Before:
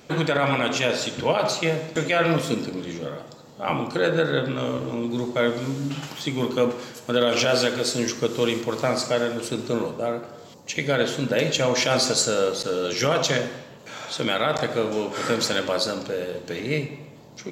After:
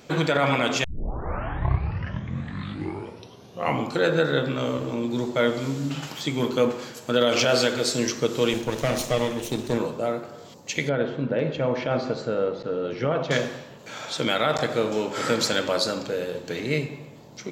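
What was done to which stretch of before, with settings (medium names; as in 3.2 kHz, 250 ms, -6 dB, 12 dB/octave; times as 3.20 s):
0.84 s: tape start 3.13 s
8.53–9.78 s: comb filter that takes the minimum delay 0.31 ms
10.89–13.31 s: tape spacing loss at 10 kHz 43 dB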